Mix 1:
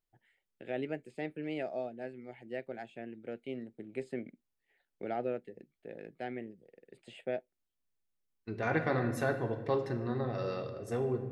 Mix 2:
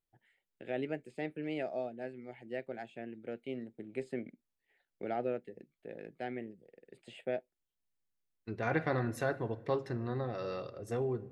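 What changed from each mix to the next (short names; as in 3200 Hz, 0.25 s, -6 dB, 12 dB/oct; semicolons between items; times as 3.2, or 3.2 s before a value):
second voice: send -11.5 dB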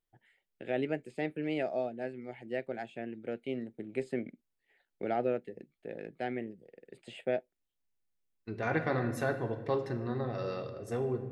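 first voice +4.0 dB; second voice: send +10.5 dB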